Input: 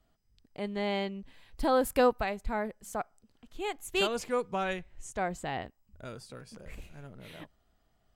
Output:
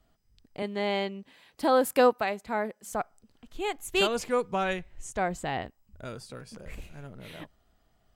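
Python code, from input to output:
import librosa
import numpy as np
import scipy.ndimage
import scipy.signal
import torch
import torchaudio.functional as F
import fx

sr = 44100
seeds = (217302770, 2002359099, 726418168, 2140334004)

y = fx.highpass(x, sr, hz=210.0, slope=12, at=(0.62, 2.92))
y = F.gain(torch.from_numpy(y), 3.5).numpy()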